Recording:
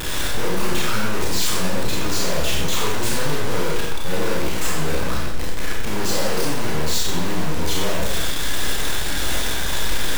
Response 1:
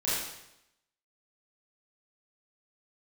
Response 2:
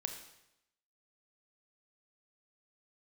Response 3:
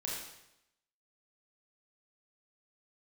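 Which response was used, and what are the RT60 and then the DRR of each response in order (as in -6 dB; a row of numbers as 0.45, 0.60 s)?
3; 0.85, 0.85, 0.85 s; -11.0, 4.5, -5.0 dB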